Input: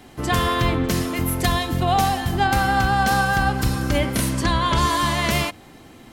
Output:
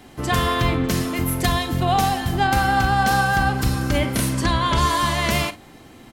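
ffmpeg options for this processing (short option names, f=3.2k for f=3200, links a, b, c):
-af "aecho=1:1:39|53:0.168|0.126"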